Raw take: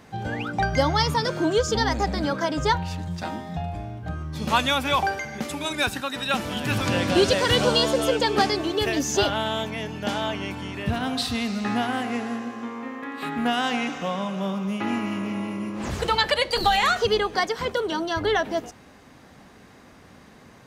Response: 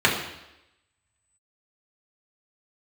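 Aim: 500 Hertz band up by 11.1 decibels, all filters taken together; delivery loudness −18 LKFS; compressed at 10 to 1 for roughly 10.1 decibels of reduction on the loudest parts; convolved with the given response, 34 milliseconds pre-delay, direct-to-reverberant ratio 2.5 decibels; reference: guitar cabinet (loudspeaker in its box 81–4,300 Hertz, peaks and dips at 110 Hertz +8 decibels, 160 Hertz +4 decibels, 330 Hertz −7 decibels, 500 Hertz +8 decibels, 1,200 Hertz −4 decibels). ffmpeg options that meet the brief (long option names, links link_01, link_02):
-filter_complex "[0:a]equalizer=frequency=500:width_type=o:gain=8,acompressor=threshold=-20dB:ratio=10,asplit=2[link_01][link_02];[1:a]atrim=start_sample=2205,adelay=34[link_03];[link_02][link_03]afir=irnorm=-1:irlink=0,volume=-22dB[link_04];[link_01][link_04]amix=inputs=2:normalize=0,highpass=81,equalizer=frequency=110:width_type=q:width=4:gain=8,equalizer=frequency=160:width_type=q:width=4:gain=4,equalizer=frequency=330:width_type=q:width=4:gain=-7,equalizer=frequency=500:width_type=q:width=4:gain=8,equalizer=frequency=1200:width_type=q:width=4:gain=-4,lowpass=frequency=4300:width=0.5412,lowpass=frequency=4300:width=1.3066,volume=4dB"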